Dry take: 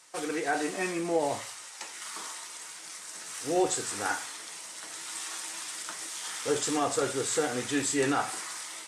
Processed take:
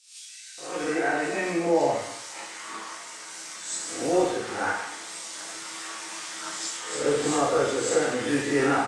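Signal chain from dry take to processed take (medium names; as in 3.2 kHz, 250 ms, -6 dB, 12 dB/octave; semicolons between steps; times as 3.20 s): reverse spectral sustain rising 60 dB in 0.52 s; distance through air 66 m; bands offset in time highs, lows 580 ms, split 3.5 kHz; plate-style reverb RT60 0.72 s, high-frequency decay 1×, DRR -2 dB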